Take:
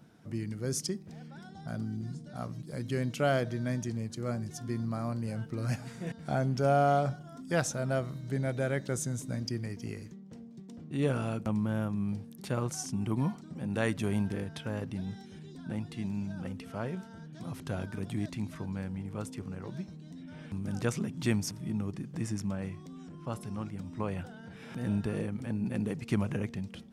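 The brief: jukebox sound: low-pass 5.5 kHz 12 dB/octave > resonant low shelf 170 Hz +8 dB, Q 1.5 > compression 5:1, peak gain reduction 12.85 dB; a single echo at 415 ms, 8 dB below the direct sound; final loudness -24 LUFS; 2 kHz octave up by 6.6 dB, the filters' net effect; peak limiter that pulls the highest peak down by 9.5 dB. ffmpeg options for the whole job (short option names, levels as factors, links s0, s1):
-af "equalizer=f=2000:t=o:g=9,alimiter=limit=0.1:level=0:latency=1,lowpass=5500,lowshelf=f=170:t=q:w=1.5:g=8,aecho=1:1:415:0.398,acompressor=threshold=0.0224:ratio=5,volume=4.47"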